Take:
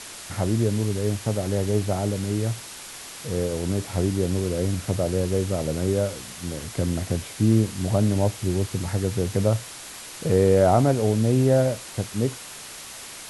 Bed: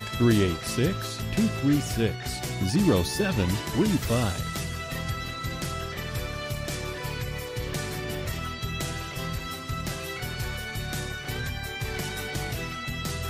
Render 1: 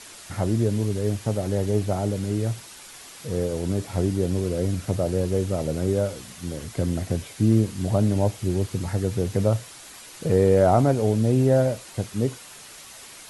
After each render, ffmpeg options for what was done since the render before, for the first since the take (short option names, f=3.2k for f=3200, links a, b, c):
-af "afftdn=nr=6:nf=-40"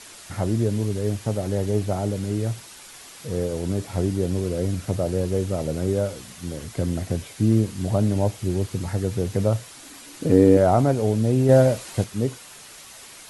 -filter_complex "[0:a]asettb=1/sr,asplit=3[a][b][c];[a]atrim=end=9.774[d];[b]atrim=start=9.77:end=10.57,asetpts=PTS-STARTPTS,afade=t=in:d=0.004:c=qsin,afade=t=out:st=0.796:d=0.004:c=qsin,equalizer=f=280:w=3.5:g=14.5[e];[c]atrim=start=10.566[f];[d][e]acrossfade=d=0.004:c1=hsin:c2=qsin[g];[g][f]acrossfade=d=0.004:c1=qsin:c2=hsin,asplit=3[h][i][j];[h]atrim=end=11.492[k];[i]atrim=start=11.488:end=12.042,asetpts=PTS-STARTPTS,volume=4.5dB[l];[j]atrim=start=12.038[m];[k][l]acrossfade=d=0.004:c1=hsin:c2=hsin[n];[n][m]acrossfade=d=0.004:c1=hsin:c2=hsin"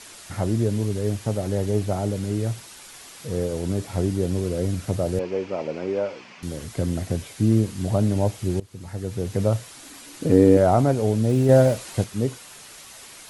-filter_complex "[0:a]asettb=1/sr,asplit=3[a][b][c];[a]atrim=end=5.194[d];[b]atrim=start=5.19:end=6.43,asetpts=PTS-STARTPTS,afade=t=in:d=0.004:c=qsin,afade=t=out:st=1.236:d=0.004:c=qsin,highpass=290,equalizer=f=950:t=q:w=4:g=6,equalizer=f=2.4k:t=q:w=4:g=8,equalizer=f=3.8k:t=q:w=4:g=-9,lowpass=f=4.8k:w=0.5412,lowpass=f=4.8k:w=1.3066[e];[c]atrim=start=6.426[f];[d][e]acrossfade=d=0.004:c1=hsin:c2=qsin[g];[g][f]acrossfade=d=0.004:c1=qsin:c2=hsin,asplit=3[h][i][j];[h]afade=t=out:st=11.28:d=0.02[k];[i]aeval=exprs='val(0)*gte(abs(val(0)),0.0168)':c=same,afade=t=in:st=11.28:d=0.02,afade=t=out:st=11.73:d=0.02[l];[j]afade=t=in:st=11.73:d=0.02[m];[k][l][m]amix=inputs=3:normalize=0,asplit=2[n][o];[n]atrim=end=8.6,asetpts=PTS-STARTPTS,afade=t=out:st=8.596:d=0.004:c=hsin:silence=0.0891251[p];[o]atrim=start=8.6,asetpts=PTS-STARTPTS,afade=t=in:d=0.86:silence=0.0891251[q];[p][q]concat=n=2:v=0:a=1"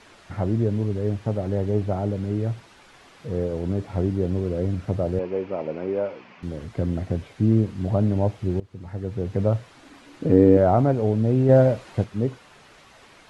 -af "lowpass=f=2.5k:p=1,aemphasis=mode=reproduction:type=50kf"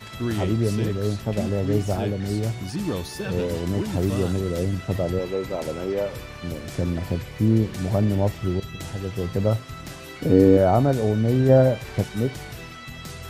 -filter_complex "[1:a]volume=-5.5dB[a];[0:a][a]amix=inputs=2:normalize=0"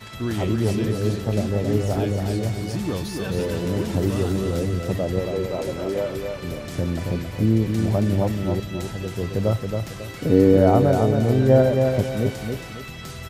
-af "aecho=1:1:273|546|819|1092:0.562|0.186|0.0612|0.0202"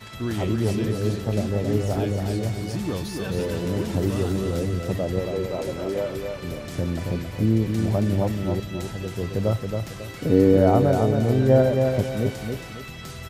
-af "volume=-1.5dB"